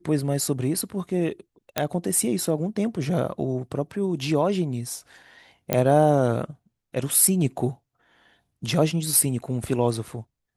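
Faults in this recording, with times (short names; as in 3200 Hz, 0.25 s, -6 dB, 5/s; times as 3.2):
1.78 pop -6 dBFS
5.73 pop -6 dBFS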